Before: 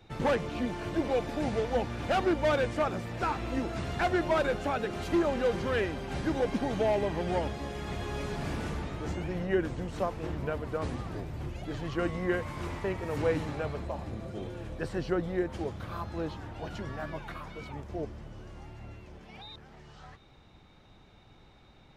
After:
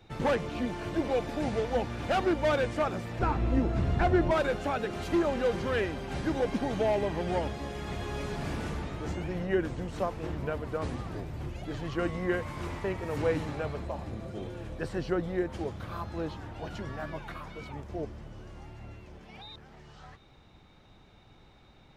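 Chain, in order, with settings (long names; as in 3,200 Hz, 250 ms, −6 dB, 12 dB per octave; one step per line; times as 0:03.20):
0:03.19–0:04.31: spectral tilt −2.5 dB per octave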